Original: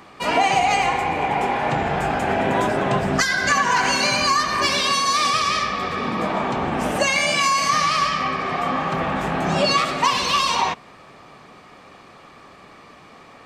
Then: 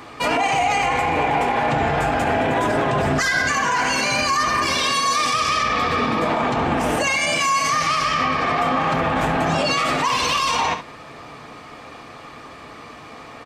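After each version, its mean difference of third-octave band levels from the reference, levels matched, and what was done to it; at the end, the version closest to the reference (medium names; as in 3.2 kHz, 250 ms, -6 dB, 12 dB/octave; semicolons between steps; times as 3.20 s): 2.5 dB: comb of notches 190 Hz; delay 71 ms -13.5 dB; dynamic bell 4.1 kHz, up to -4 dB, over -36 dBFS, Q 2.4; peak limiter -19 dBFS, peak gain reduction 11.5 dB; trim +7.5 dB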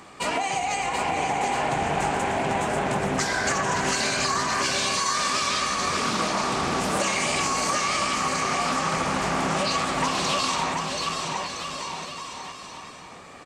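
6.0 dB: peaking EQ 7.8 kHz +11.5 dB 0.71 oct; compression, threshold -22 dBFS, peak gain reduction 9.5 dB; bouncing-ball echo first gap 730 ms, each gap 0.8×, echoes 5; loudspeaker Doppler distortion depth 0.33 ms; trim -1.5 dB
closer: first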